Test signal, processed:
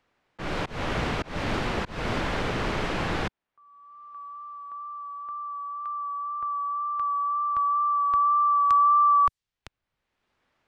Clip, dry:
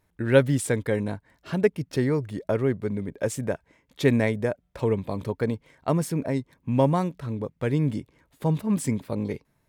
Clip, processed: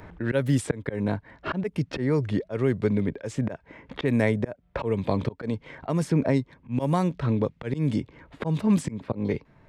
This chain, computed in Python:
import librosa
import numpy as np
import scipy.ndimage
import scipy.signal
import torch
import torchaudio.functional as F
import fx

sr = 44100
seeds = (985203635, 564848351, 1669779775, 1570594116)

y = fx.env_lowpass(x, sr, base_hz=2000.0, full_db=-16.5)
y = fx.auto_swell(y, sr, attack_ms=321.0)
y = fx.wow_flutter(y, sr, seeds[0], rate_hz=2.1, depth_cents=18.0)
y = fx.band_squash(y, sr, depth_pct=70)
y = y * librosa.db_to_amplitude(6.0)